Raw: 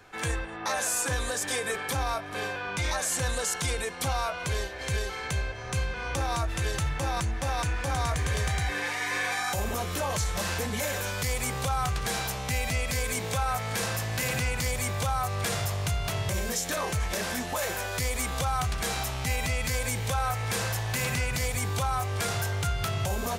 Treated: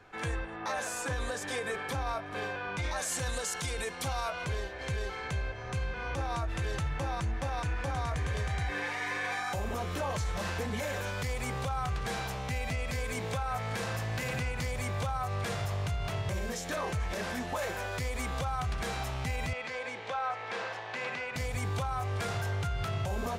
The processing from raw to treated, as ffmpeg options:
-filter_complex "[0:a]asettb=1/sr,asplit=3[s0][s1][s2];[s0]atrim=end=2.964[s3];[s1]atrim=start=2.96:end=4.45,asetpts=PTS-STARTPTS,afade=t=in:d=0.004:c=qsin,afade=t=out:st=1.486:d=0.004:c=qsin,highshelf=f=3700:g=9.5[s4];[s2]atrim=start=4.446[s5];[s3][s4]acrossfade=d=0.004:c1=hsin:c2=qsin[s6];[s6][s5]acrossfade=d=0.004:c1=qsin:c2=hsin,asettb=1/sr,asplit=3[s7][s8][s9];[s7]atrim=end=19.534[s10];[s8]atrim=start=19.53:end=21.36,asetpts=PTS-STARTPTS,afade=t=in:d=0.004:c=qsin,afade=t=out:st=1.826:d=0.004:c=qsin,highpass=390,lowpass=3800[s11];[s9]atrim=start=21.356[s12];[s10][s11]acrossfade=d=0.004:c1=hsin:c2=qsin[s13];[s13][s12]acrossfade=d=0.004:c1=qsin:c2=hsin,lowpass=f=2700:p=1,alimiter=limit=0.075:level=0:latency=1:release=70,volume=0.794"

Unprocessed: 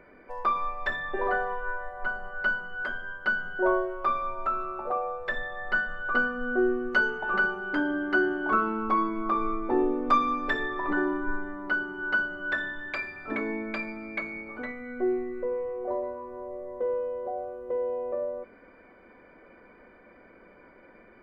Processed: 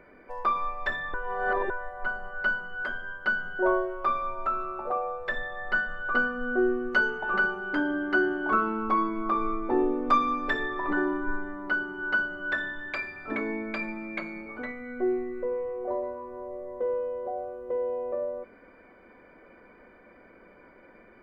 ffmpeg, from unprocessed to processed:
-filter_complex "[0:a]asettb=1/sr,asplit=3[s0][s1][s2];[s0]atrim=end=13.814[s3];[s1]atrim=start=13.81:end=14.46,asetpts=PTS-STARTPTS,afade=t=in:d=0.004:c=qsin,afade=t=out:st=0.646:d=0.004:c=qsin,aecho=1:1:5.6:0.65,atrim=end_sample=28665[s4];[s2]atrim=start=14.456[s5];[s3][s4]acrossfade=d=0.004:c1=hsin:c2=qsin[s6];[s6][s5]acrossfade=d=0.004:c1=qsin:c2=hsin,asplit=3[s7][s8][s9];[s7]atrim=end=1.142[s10];[s8]atrim=start=1.138:end=1.702,asetpts=PTS-STARTPTS,areverse[s11];[s9]atrim=start=1.698[s12];[s10][s11]acrossfade=d=0.004:c1=hsin:c2=hsin[s13];[s13][s12]acrossfade=d=0.004:c1=hsin:c2=hsin"

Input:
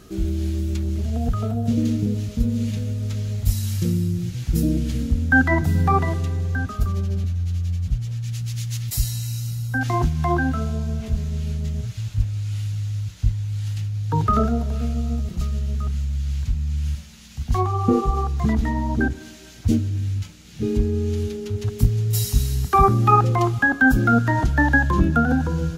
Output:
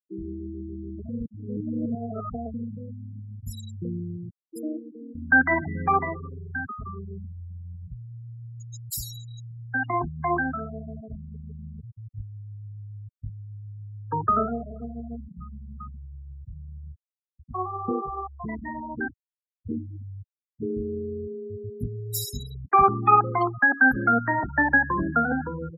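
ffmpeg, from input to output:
-filter_complex "[0:a]asettb=1/sr,asplit=3[s0][s1][s2];[s0]atrim=end=4.304[s3];[s1]atrim=start=4.3:end=5.15,asetpts=PTS-STARTPTS,afade=t=in:d=0.004:c=qsin,afade=t=out:st=0.846:d=0.004:c=qsin,highpass=f=280:w=0.5412,highpass=f=280:w=1.3066[s4];[s2]atrim=start=5.146[s5];[s3][s4]acrossfade=d=0.004:c1=hsin:c2=qsin[s6];[s6][s5]acrossfade=d=0.004:c1=qsin:c2=hsin,asplit=5[s7][s8][s9][s10][s11];[s7]atrim=end=1.092[s12];[s8]atrim=start=1.088:end=2.542,asetpts=PTS-STARTPTS,areverse[s13];[s9]atrim=start=2.538:end=16.922[s14];[s10]atrim=start=16.918:end=19.772,asetpts=PTS-STARTPTS,volume=0.631[s15];[s11]atrim=start=19.768[s16];[s12][s13]acrossfade=d=0.004:c1=hsin:c2=hsin[s17];[s17][s14]acrossfade=d=0.004:c1=hsin:c2=hsin[s18];[s18][s15]acrossfade=d=0.004:c1=hsin:c2=hsin[s19];[s19][s16]acrossfade=d=0.004:c1=hsin:c2=hsin,highpass=f=500:p=1,bandreject=f=6000:w=12,afftfilt=real='re*gte(hypot(re,im),0.0501)':imag='im*gte(hypot(re,im),0.0501)':win_size=1024:overlap=0.75"

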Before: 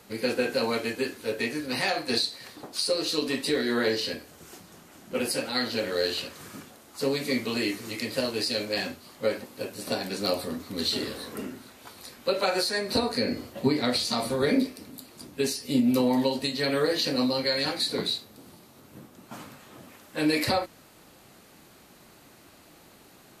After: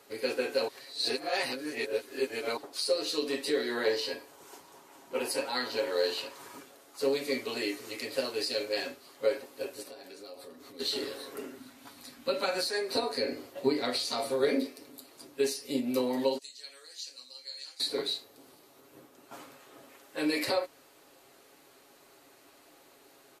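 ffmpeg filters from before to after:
-filter_complex "[0:a]asettb=1/sr,asplit=3[s0][s1][s2];[s0]atrim=end=3.854[s3];[s1]atrim=start=3.85:end=6.58,asetpts=PTS-STARTPTS,afade=t=in:d=0.004:c=qsin,afade=t=out:st=2.726:d=0.004:c=qsin,equalizer=f=940:t=o:w=0.32:g=11[s4];[s2]atrim=start=6.576[s5];[s3][s4]acrossfade=d=0.004:c1=hsin:c2=qsin[s6];[s6][s5]acrossfade=d=0.004:c1=qsin:c2=hsin,asplit=3[s7][s8][s9];[s7]afade=t=out:st=9.82:d=0.02[s10];[s8]acompressor=threshold=0.01:ratio=8:attack=3.2:release=140:knee=1:detection=peak,afade=t=in:st=9.82:d=0.02,afade=t=out:st=10.79:d=0.02[s11];[s9]afade=t=in:st=10.79:d=0.02[s12];[s10][s11][s12]amix=inputs=3:normalize=0,asettb=1/sr,asplit=3[s13][s14][s15];[s13]atrim=end=11.584[s16];[s14]atrim=start=11.58:end=12.67,asetpts=PTS-STARTPTS,afade=t=in:d=0.004:c=qsin,afade=t=out:st=1.086:d=0.004:c=qsin,lowshelf=f=310:t=q:w=3:g=7[s17];[s15]atrim=start=12.666[s18];[s16][s17]acrossfade=d=0.004:c1=hsin:c2=qsin[s19];[s19][s18]acrossfade=d=0.004:c1=qsin:c2=hsin,asettb=1/sr,asplit=3[s20][s21][s22];[s20]atrim=end=16.384[s23];[s21]atrim=start=16.38:end=17.8,asetpts=PTS-STARTPTS,afade=t=in:d=0.004:c=qsin,afade=t=out:st=1.416:d=0.004:c=qsin,bandpass=f=7000:t=q:w=2.5[s24];[s22]atrim=start=17.796[s25];[s23][s24]acrossfade=d=0.004:c1=hsin:c2=qsin[s26];[s26][s25]acrossfade=d=0.004:c1=qsin:c2=hsin,asplit=3[s27][s28][s29];[s27]atrim=end=0.682[s30];[s28]atrim=start=0.678:end=2.572,asetpts=PTS-STARTPTS,areverse[s31];[s29]atrim=start=2.568[s32];[s30][s31]acrossfade=d=0.004:c1=hsin:c2=hsin[s33];[s33][s32]acrossfade=d=0.004:c1=hsin:c2=hsin,lowshelf=f=260:t=q:w=1.5:g=-10,aecho=1:1:7.3:0.47,volume=0.531"

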